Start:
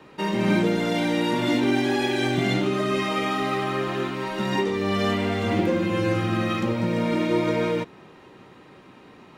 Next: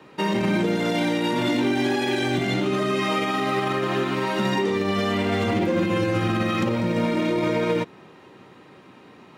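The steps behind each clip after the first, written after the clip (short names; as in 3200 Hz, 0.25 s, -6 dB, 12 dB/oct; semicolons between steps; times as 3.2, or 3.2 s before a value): HPF 83 Hz; limiter -22 dBFS, peak gain reduction 11 dB; upward expander 1.5:1, over -43 dBFS; gain +8 dB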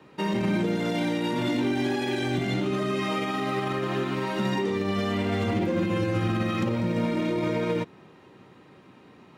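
low shelf 210 Hz +6 dB; gain -5.5 dB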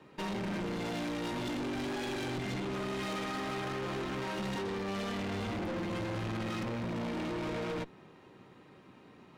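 tube stage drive 34 dB, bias 0.75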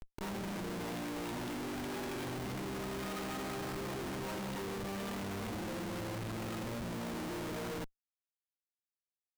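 compressor 2.5:1, threshold -47 dBFS, peak gain reduction 8.5 dB; Schmitt trigger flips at -46 dBFS; gain +5.5 dB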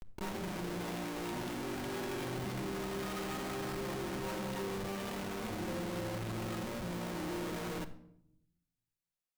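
shoebox room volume 1900 m³, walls furnished, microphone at 1 m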